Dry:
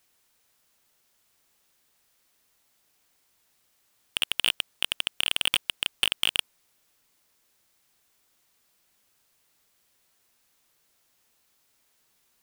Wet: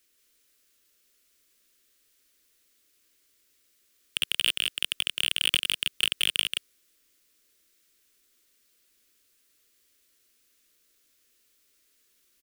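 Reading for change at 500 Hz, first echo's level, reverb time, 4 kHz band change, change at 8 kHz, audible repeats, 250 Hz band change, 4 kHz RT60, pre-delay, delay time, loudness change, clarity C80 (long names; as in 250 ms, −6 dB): −1.5 dB, −3.5 dB, no reverb audible, +1.0 dB, +1.5 dB, 1, 0.0 dB, no reverb audible, no reverb audible, 177 ms, +0.5 dB, no reverb audible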